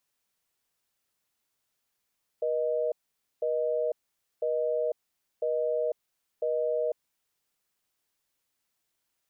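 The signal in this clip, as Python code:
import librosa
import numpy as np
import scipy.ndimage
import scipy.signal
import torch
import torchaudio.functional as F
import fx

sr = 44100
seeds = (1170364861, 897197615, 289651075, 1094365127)

y = fx.call_progress(sr, length_s=4.72, kind='busy tone', level_db=-28.0)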